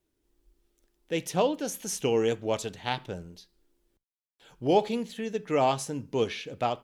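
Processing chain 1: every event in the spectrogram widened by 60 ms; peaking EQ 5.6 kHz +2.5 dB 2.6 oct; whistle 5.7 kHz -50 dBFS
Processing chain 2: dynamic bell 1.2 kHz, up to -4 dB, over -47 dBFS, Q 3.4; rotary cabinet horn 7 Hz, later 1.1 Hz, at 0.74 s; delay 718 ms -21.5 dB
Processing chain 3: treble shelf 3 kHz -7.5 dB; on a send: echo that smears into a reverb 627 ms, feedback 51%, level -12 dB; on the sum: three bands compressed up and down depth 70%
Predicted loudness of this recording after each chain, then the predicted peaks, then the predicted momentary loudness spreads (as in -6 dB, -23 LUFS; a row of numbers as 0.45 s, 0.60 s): -25.0 LUFS, -31.5 LUFS, -30.0 LUFS; -7.5 dBFS, -13.5 dBFS, -11.0 dBFS; 8 LU, 9 LU, 8 LU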